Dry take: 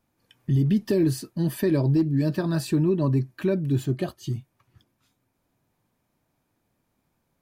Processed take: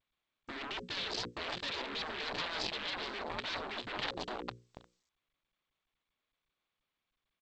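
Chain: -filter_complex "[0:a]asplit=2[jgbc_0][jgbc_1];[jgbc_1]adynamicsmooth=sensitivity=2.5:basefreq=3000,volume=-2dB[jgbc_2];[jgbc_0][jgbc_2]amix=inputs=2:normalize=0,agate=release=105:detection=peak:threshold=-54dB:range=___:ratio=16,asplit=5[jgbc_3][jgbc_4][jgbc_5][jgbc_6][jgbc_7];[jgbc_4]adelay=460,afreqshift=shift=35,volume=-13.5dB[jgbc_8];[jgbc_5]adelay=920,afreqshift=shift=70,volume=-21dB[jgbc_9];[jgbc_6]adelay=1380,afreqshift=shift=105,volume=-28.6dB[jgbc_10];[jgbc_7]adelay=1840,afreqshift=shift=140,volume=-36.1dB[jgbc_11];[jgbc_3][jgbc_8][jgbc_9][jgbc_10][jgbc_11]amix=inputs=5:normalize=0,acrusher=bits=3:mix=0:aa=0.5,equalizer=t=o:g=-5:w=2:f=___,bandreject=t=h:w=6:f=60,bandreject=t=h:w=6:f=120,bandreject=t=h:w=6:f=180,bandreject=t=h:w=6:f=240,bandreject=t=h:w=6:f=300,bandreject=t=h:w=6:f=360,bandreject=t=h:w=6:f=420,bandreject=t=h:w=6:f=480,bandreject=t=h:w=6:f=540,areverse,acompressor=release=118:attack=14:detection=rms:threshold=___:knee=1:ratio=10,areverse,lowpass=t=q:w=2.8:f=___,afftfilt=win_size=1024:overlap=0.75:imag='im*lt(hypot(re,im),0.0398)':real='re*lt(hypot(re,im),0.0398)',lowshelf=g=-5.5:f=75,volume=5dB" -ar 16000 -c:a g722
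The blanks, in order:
-51dB, 310, -34dB, 4000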